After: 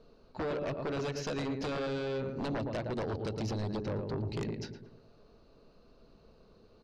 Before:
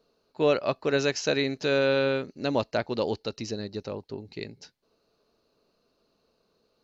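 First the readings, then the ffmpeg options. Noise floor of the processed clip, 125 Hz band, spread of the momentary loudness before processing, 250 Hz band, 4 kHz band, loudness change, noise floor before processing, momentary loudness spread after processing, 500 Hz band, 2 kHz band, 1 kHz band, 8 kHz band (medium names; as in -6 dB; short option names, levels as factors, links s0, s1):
-62 dBFS, 0.0 dB, 14 LU, -5.0 dB, -11.5 dB, -8.5 dB, -72 dBFS, 4 LU, -9.5 dB, -12.0 dB, -6.5 dB, no reading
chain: -filter_complex "[0:a]acompressor=threshold=0.0141:ratio=6,aemphasis=mode=reproduction:type=bsi,bandreject=f=60:t=h:w=6,bandreject=f=120:t=h:w=6,bandreject=f=180:t=h:w=6,bandreject=f=240:t=h:w=6,bandreject=f=300:t=h:w=6,bandreject=f=360:t=h:w=6,bandreject=f=420:t=h:w=6,asplit=2[s0][s1];[s1]adelay=113,lowpass=f=1700:p=1,volume=0.447,asplit=2[s2][s3];[s3]adelay=113,lowpass=f=1700:p=1,volume=0.51,asplit=2[s4][s5];[s5]adelay=113,lowpass=f=1700:p=1,volume=0.51,asplit=2[s6][s7];[s7]adelay=113,lowpass=f=1700:p=1,volume=0.51,asplit=2[s8][s9];[s9]adelay=113,lowpass=f=1700:p=1,volume=0.51,asplit=2[s10][s11];[s11]adelay=113,lowpass=f=1700:p=1,volume=0.51[s12];[s2][s4][s6][s8][s10][s12]amix=inputs=6:normalize=0[s13];[s0][s13]amix=inputs=2:normalize=0,aeval=exprs='0.0708*sin(PI/2*3.16*val(0)/0.0708)':c=same,volume=0.422"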